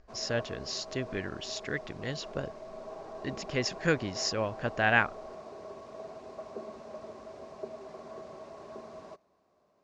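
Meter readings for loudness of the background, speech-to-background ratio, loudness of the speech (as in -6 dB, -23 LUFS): -44.5 LUFS, 12.5 dB, -32.0 LUFS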